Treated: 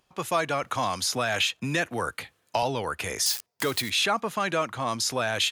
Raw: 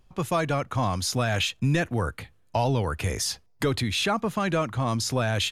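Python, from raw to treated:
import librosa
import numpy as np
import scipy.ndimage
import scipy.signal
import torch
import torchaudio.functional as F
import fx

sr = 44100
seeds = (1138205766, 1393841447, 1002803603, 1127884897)

y = fx.crossing_spikes(x, sr, level_db=-27.0, at=(3.26, 3.9))
y = fx.highpass(y, sr, hz=620.0, slope=6)
y = fx.band_squash(y, sr, depth_pct=40, at=(0.63, 2.63))
y = y * 10.0 ** (2.5 / 20.0)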